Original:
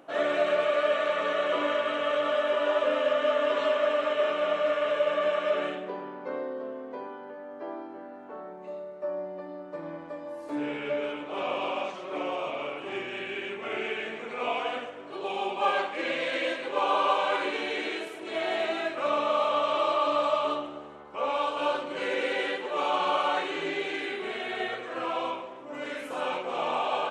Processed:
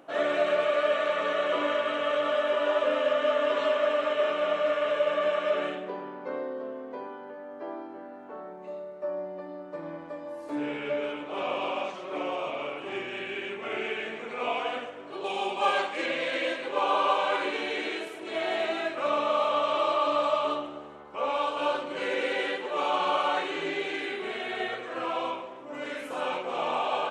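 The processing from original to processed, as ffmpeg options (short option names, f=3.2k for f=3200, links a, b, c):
-filter_complex "[0:a]asettb=1/sr,asplit=3[a][b][c];[a]atrim=end=15.244[d];[b]atrim=start=15.24:end=16.06,asetpts=PTS-STARTPTS,afade=t=in:d=0.004:c=qsin,afade=t=out:st=0.816:d=0.004:c=qsin,highshelf=f=4.5k:g=9[e];[c]atrim=start=16.056[f];[d][e]acrossfade=d=0.004:c1=hsin:c2=qsin[g];[g][f]acrossfade=d=0.004:c1=qsin:c2=hsin"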